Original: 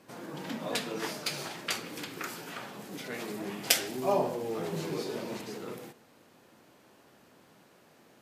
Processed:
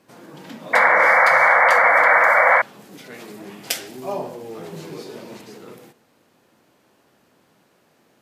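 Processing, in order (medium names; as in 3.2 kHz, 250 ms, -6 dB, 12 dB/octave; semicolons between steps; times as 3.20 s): painted sound noise, 0.73–2.62 s, 470–2300 Hz -14 dBFS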